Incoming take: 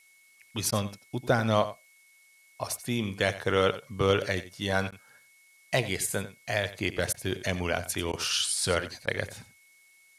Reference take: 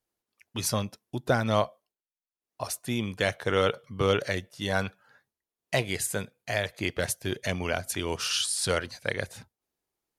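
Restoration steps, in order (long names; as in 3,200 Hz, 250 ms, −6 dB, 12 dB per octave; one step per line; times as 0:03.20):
notch filter 2,200 Hz, Q 30
repair the gap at 0:00.71/0:04.91/0:07.13/0:08.12/0:09.06, 11 ms
downward expander −52 dBFS, range −21 dB
echo removal 90 ms −14.5 dB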